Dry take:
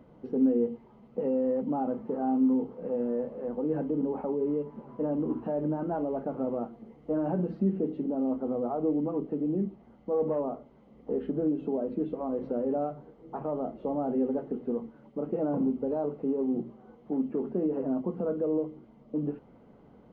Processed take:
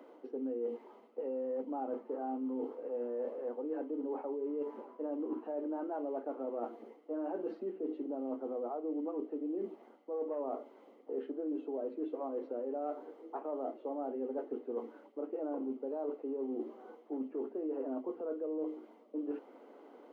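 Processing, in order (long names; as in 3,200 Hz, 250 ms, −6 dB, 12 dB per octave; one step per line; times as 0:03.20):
Butterworth high-pass 280 Hz 48 dB per octave
reversed playback
downward compressor 6 to 1, threshold −39 dBFS, peak gain reduction 14.5 dB
reversed playback
level +3.5 dB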